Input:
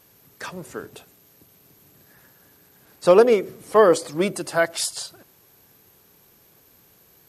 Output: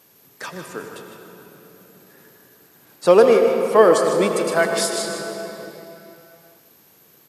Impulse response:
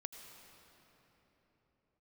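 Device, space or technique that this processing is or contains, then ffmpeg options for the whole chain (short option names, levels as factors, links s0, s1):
cave: -filter_complex "[0:a]aecho=1:1:153:0.335[s0];[1:a]atrim=start_sample=2205[s1];[s0][s1]afir=irnorm=-1:irlink=0,highpass=150,volume=2"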